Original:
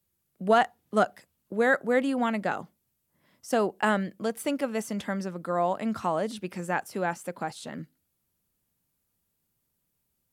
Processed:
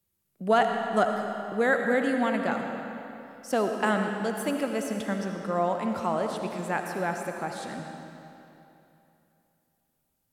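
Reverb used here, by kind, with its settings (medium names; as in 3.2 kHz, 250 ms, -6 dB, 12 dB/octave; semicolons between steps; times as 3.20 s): algorithmic reverb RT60 3 s, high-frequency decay 0.85×, pre-delay 35 ms, DRR 3.5 dB; trim -1 dB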